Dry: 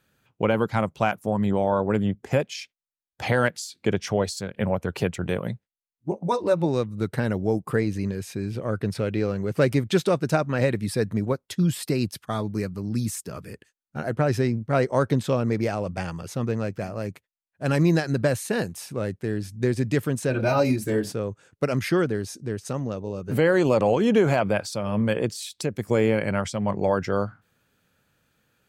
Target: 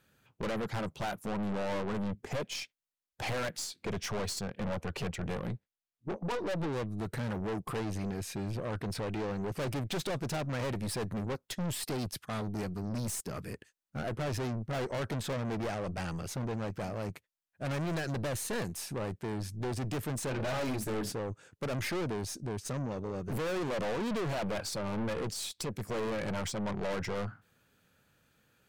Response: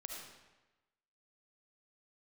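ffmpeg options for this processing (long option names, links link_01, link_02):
-filter_complex "[0:a]asettb=1/sr,asplit=3[link_01][link_02][link_03];[link_01]atrim=end=4.394[link_04];[link_02]atrim=start=4.39:end=6.87,asetpts=PTS-STARTPTS,afade=type=in:duration=0.004:curve=qsin,afade=type=out:start_time=2.476:duration=0.004:curve=qsin,highshelf=frequency=8000:gain=-9[link_05];[link_03]atrim=start=6.866[link_06];[link_04][link_05]acrossfade=duration=0.004:curve1=hsin:curve2=qsin[link_07];[link_07][link_06]acrossfade=duration=0.004:curve1=qsin:curve2=hsin,aeval=exprs='(tanh(39.8*val(0)+0.35)-tanh(0.35))/39.8':channel_layout=same"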